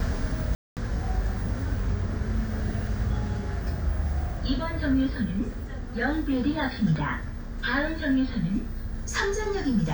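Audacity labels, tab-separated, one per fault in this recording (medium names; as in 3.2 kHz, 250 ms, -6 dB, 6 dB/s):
0.550000	0.770000	dropout 218 ms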